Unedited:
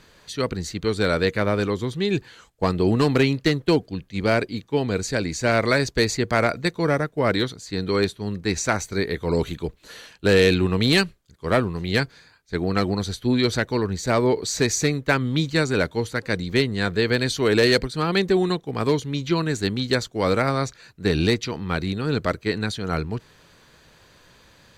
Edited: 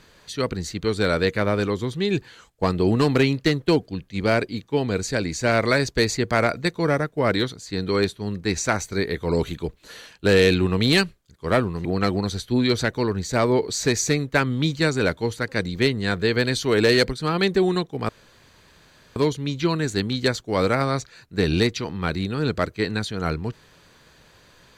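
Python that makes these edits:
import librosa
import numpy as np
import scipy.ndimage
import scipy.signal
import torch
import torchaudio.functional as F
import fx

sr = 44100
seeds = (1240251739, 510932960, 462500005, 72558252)

y = fx.edit(x, sr, fx.cut(start_s=11.85, length_s=0.74),
    fx.insert_room_tone(at_s=18.83, length_s=1.07), tone=tone)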